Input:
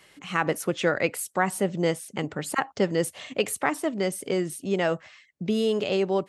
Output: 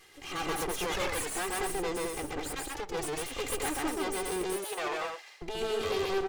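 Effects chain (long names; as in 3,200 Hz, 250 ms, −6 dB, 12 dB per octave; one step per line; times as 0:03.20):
lower of the sound and its delayed copy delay 2.5 ms
0:02.27–0:02.96: downward compressor 4 to 1, threshold −35 dBFS, peak gain reduction 11.5 dB
0:04.43–0:05.42: high-pass filter 510 Hz 24 dB per octave
soft clipping −30.5 dBFS, distortion −7 dB
loudspeakers that aren't time-aligned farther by 46 metres −1 dB, 75 metres −5 dB
wow of a warped record 33 1/3 rpm, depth 160 cents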